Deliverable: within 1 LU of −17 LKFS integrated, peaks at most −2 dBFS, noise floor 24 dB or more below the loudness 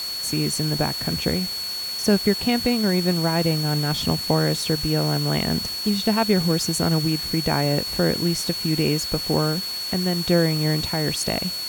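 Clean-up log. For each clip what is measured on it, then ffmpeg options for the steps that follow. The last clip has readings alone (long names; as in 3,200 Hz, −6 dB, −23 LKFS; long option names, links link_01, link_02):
interfering tone 4,400 Hz; level of the tone −27 dBFS; background noise floor −29 dBFS; target noise floor −46 dBFS; integrated loudness −21.5 LKFS; sample peak −5.5 dBFS; target loudness −17.0 LKFS
→ -af "bandreject=frequency=4400:width=30"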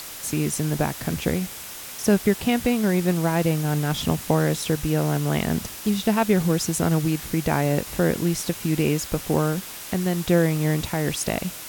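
interfering tone none found; background noise floor −37 dBFS; target noise floor −48 dBFS
→ -af "afftdn=noise_reduction=11:noise_floor=-37"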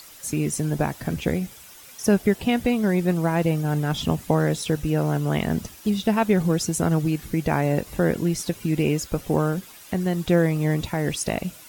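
background noise floor −46 dBFS; target noise floor −48 dBFS
→ -af "afftdn=noise_reduction=6:noise_floor=-46"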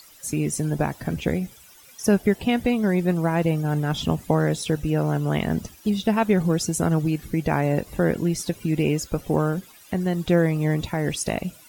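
background noise floor −50 dBFS; integrated loudness −23.5 LKFS; sample peak −6.0 dBFS; target loudness −17.0 LKFS
→ -af "volume=6.5dB,alimiter=limit=-2dB:level=0:latency=1"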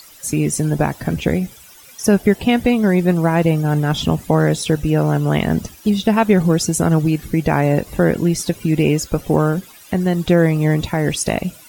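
integrated loudness −17.5 LKFS; sample peak −2.0 dBFS; background noise floor −43 dBFS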